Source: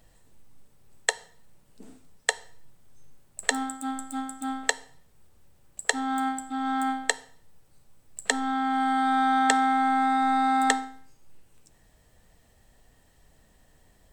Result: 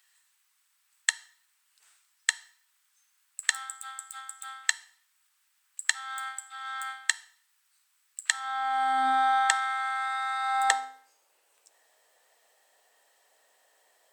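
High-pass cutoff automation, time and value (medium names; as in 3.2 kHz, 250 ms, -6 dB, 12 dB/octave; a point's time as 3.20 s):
high-pass 24 dB/octave
8.29 s 1.3 kHz
9.08 s 350 Hz
9.60 s 1.1 kHz
10.38 s 1.1 kHz
10.87 s 520 Hz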